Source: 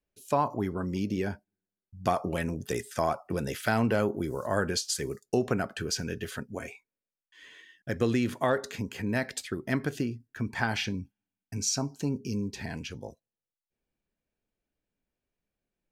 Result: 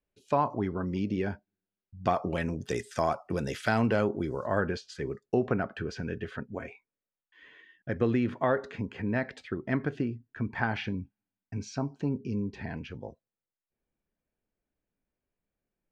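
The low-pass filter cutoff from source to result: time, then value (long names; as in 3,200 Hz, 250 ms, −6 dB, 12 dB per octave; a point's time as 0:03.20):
0:01.99 3,500 Hz
0:02.85 6,900 Hz
0:03.61 6,900 Hz
0:04.39 3,800 Hz
0:04.73 2,200 Hz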